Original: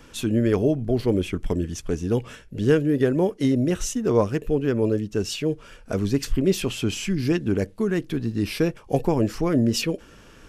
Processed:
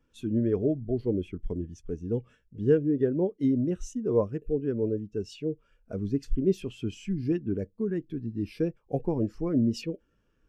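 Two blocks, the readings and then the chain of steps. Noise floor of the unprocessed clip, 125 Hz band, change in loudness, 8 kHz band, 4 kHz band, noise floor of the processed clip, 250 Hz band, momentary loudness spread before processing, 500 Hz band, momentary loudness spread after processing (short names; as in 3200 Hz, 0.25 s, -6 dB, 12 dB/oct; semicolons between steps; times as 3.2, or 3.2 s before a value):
-49 dBFS, -7.0 dB, -6.0 dB, -17.5 dB, -16.0 dB, -70 dBFS, -5.5 dB, 7 LU, -5.5 dB, 10 LU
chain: spectral expander 1.5:1; gain -4.5 dB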